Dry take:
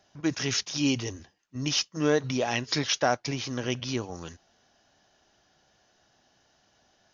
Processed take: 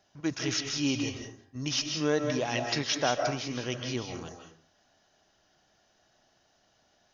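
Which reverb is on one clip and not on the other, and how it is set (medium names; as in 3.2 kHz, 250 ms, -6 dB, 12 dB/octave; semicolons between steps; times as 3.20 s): algorithmic reverb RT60 0.47 s, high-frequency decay 0.65×, pre-delay 115 ms, DRR 3.5 dB; trim -3.5 dB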